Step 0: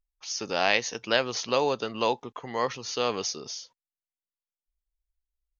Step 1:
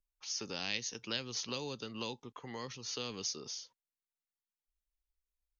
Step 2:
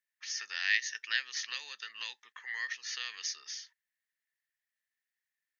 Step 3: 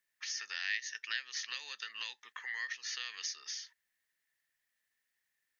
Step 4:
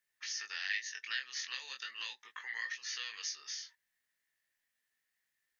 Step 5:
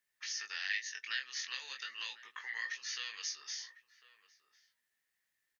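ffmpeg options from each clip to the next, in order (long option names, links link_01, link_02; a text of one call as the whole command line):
ffmpeg -i in.wav -filter_complex "[0:a]equalizer=frequency=660:width_type=o:width=0.31:gain=-6.5,acrossover=split=270|3000[link_01][link_02][link_03];[link_02]acompressor=threshold=-39dB:ratio=6[link_04];[link_01][link_04][link_03]amix=inputs=3:normalize=0,volume=-5.5dB" out.wav
ffmpeg -i in.wav -af "highpass=frequency=1800:width_type=q:width=14" out.wav
ffmpeg -i in.wav -af "acompressor=threshold=-49dB:ratio=2,volume=6dB" out.wav
ffmpeg -i in.wav -af "flanger=delay=17.5:depth=5.7:speed=0.37,volume=2.5dB" out.wav
ffmpeg -i in.wav -filter_complex "[0:a]asplit=2[link_01][link_02];[link_02]adelay=1050,volume=-15dB,highshelf=frequency=4000:gain=-23.6[link_03];[link_01][link_03]amix=inputs=2:normalize=0" out.wav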